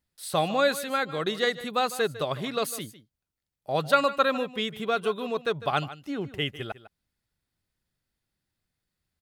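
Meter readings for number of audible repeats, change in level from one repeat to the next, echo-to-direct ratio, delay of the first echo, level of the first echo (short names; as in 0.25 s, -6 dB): 1, no steady repeat, -15.5 dB, 0.152 s, -15.5 dB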